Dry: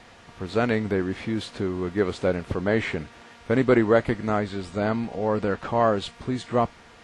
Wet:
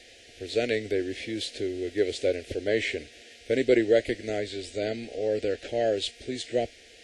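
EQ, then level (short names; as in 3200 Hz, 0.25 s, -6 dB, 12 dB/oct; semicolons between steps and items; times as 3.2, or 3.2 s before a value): Butterworth band-stop 1100 Hz, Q 0.91; low shelf 430 Hz -11 dB; fixed phaser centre 420 Hz, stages 4; +5.0 dB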